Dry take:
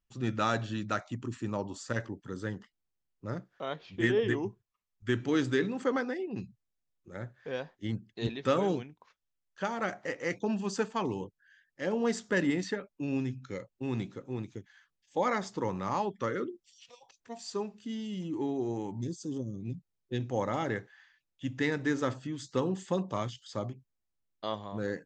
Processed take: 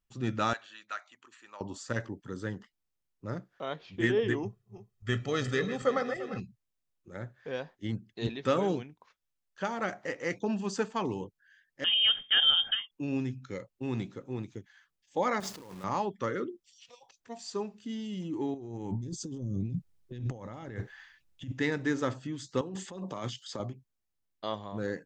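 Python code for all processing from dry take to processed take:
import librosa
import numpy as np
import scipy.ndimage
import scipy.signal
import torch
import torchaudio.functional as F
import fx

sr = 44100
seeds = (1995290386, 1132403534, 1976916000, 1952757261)

y = fx.chain(x, sr, fx.highpass(hz=1400.0, slope=12),
    fx.high_shelf(hz=3600.0, db=-9.5),
    fx.notch(hz=5300.0, q=11.0), at=(0.53, 1.61))
y = fx.chain(y, sr, fx.reverse_delay_fb(ms=174, feedback_pct=63, wet_db=-11.0),
    fx.comb(ms=1.6, depth=0.69), at=(4.43, 6.4))
y = fx.chain(y, sr, fx.low_shelf(hz=220.0, db=11.5),
    fx.freq_invert(carrier_hz=3400), at=(11.84, 12.91))
y = fx.chain(y, sr, fx.highpass(hz=96.0, slope=12),
    fx.quant_companded(bits=4),
    fx.over_compress(threshold_db=-44.0, ratio=-1.0), at=(15.4, 15.84))
y = fx.chain(y, sr, fx.over_compress(threshold_db=-42.0, ratio=-1.0),
    fx.low_shelf(hz=150.0, db=11.5), at=(18.54, 21.52))
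y = fx.chain(y, sr, fx.highpass(hz=140.0, slope=12),
    fx.over_compress(threshold_db=-38.0, ratio=-1.0), at=(22.61, 23.6))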